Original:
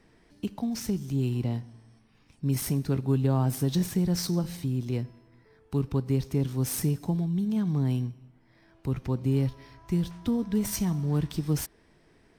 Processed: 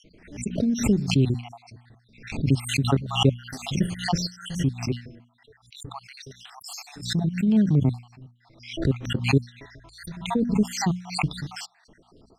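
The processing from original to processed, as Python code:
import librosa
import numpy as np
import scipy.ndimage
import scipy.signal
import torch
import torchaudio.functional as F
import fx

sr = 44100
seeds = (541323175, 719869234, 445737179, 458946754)

y = fx.spec_dropout(x, sr, seeds[0], share_pct=65)
y = scipy.signal.sosfilt(scipy.signal.butter(2, 5200.0, 'lowpass', fs=sr, output='sos'), y)
y = fx.peak_eq(y, sr, hz=1000.0, db=-6.5, octaves=0.2)
y = fx.hum_notches(y, sr, base_hz=60, count=4)
y = fx.pre_swell(y, sr, db_per_s=110.0)
y = y * librosa.db_to_amplitude(8.5)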